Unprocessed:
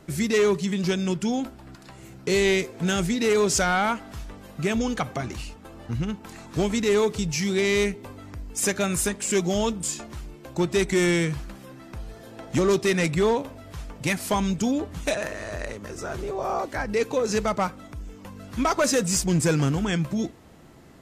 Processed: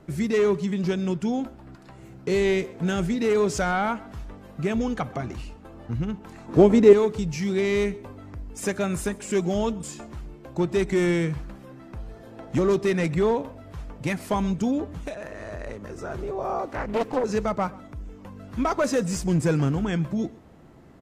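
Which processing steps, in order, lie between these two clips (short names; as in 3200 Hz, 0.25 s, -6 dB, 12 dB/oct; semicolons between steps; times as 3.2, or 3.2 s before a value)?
6.48–6.93 bell 430 Hz +11.5 dB 2.7 oct; 14.91–15.66 compressor 6:1, threshold -30 dBFS, peak gain reduction 9 dB; high shelf 2400 Hz -11 dB; echo 0.13 s -22.5 dB; 16.69–17.24 Doppler distortion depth 0.75 ms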